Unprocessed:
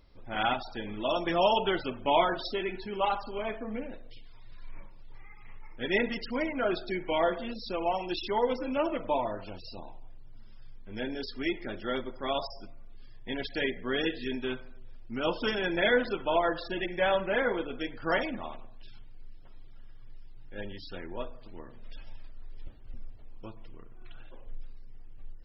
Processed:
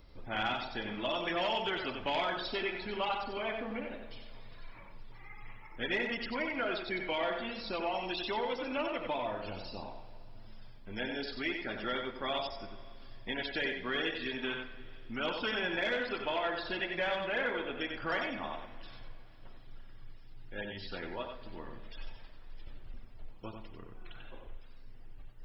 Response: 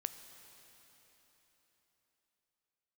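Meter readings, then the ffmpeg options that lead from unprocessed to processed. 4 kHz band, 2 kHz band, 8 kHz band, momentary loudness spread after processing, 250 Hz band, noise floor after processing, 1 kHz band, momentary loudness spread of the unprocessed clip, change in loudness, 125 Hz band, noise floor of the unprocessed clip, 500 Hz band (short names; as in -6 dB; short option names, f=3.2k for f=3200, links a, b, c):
-1.0 dB, -1.0 dB, n/a, 20 LU, -5.5 dB, -50 dBFS, -5.5 dB, 18 LU, -4.5 dB, -4.5 dB, -46 dBFS, -6.5 dB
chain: -filter_complex "[0:a]aeval=exprs='0.266*sin(PI/2*1.58*val(0)/0.266)':c=same,acrossover=split=680|1700|4100[a][b][c][d];[a]acompressor=threshold=-35dB:ratio=4[e];[b]acompressor=threshold=-35dB:ratio=4[f];[c]acompressor=threshold=-32dB:ratio=4[g];[d]acompressor=threshold=-55dB:ratio=4[h];[e][f][g][h]amix=inputs=4:normalize=0,asplit=2[i][j];[1:a]atrim=start_sample=2205,asetrate=57330,aresample=44100,adelay=92[k];[j][k]afir=irnorm=-1:irlink=0,volume=-1.5dB[l];[i][l]amix=inputs=2:normalize=0,volume=-5dB"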